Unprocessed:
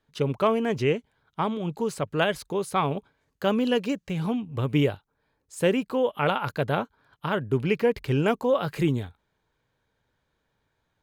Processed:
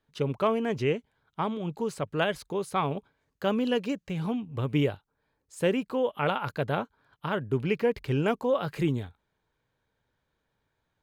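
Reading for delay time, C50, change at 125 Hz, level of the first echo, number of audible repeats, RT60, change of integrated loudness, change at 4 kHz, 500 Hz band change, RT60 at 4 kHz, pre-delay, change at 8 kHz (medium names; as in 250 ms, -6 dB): no echo, no reverb, -3.0 dB, no echo, no echo, no reverb, -3.0 dB, -3.5 dB, -3.0 dB, no reverb, no reverb, -5.0 dB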